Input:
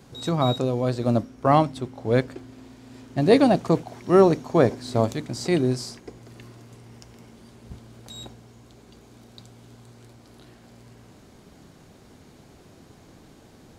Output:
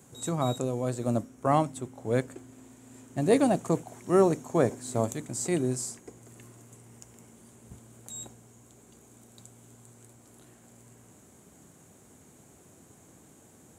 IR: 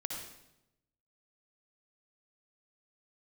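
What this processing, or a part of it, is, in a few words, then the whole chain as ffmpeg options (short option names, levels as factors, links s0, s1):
budget condenser microphone: -af "highpass=75,highshelf=f=6000:t=q:w=3:g=8,volume=0.501"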